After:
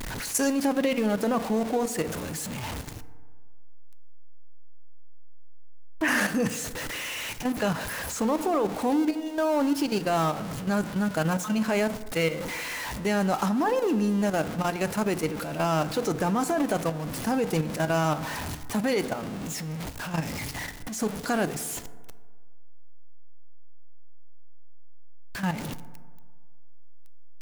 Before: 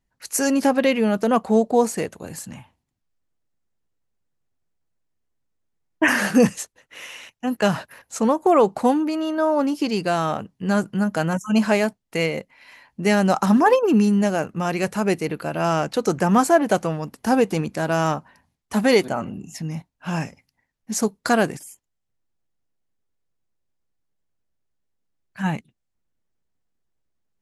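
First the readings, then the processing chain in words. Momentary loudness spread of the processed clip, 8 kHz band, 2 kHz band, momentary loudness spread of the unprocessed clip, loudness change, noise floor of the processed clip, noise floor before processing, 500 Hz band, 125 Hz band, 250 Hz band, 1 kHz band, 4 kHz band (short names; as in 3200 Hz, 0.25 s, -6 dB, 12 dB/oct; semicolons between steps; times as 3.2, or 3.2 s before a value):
8 LU, -2.0 dB, -4.5 dB, 15 LU, -6.5 dB, -35 dBFS, -77 dBFS, -6.5 dB, -4.0 dB, -6.0 dB, -6.5 dB, -3.0 dB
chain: zero-crossing step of -23.5 dBFS; level quantiser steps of 10 dB; FDN reverb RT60 1.6 s, low-frequency decay 0.95×, high-frequency decay 0.35×, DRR 12.5 dB; gain -4 dB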